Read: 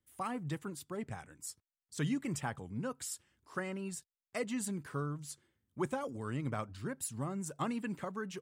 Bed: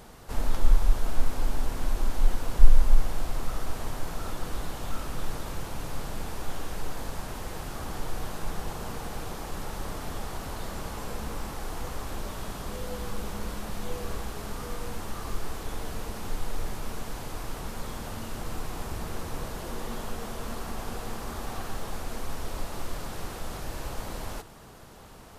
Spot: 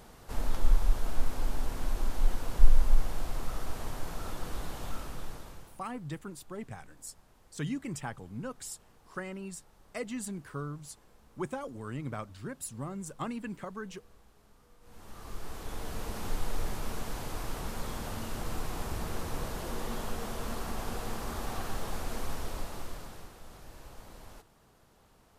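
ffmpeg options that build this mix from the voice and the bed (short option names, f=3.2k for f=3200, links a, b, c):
-filter_complex "[0:a]adelay=5600,volume=-0.5dB[a];[1:a]volume=21dB,afade=t=out:st=4.84:d=0.99:silence=0.0794328,afade=t=in:st=14.81:d=1.41:silence=0.0562341,afade=t=out:st=22.24:d=1.08:silence=0.223872[b];[a][b]amix=inputs=2:normalize=0"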